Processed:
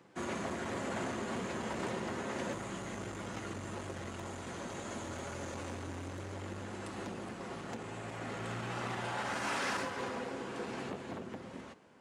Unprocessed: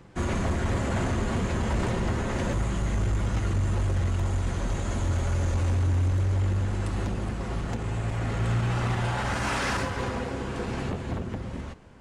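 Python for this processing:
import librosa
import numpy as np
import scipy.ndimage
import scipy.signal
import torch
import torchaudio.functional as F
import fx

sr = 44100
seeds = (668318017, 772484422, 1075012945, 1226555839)

y = scipy.signal.sosfilt(scipy.signal.butter(2, 230.0, 'highpass', fs=sr, output='sos'), x)
y = y * librosa.db_to_amplitude(-6.5)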